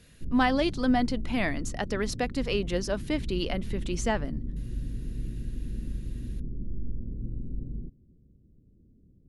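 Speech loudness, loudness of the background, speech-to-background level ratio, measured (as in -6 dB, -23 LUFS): -29.5 LUFS, -38.5 LUFS, 9.0 dB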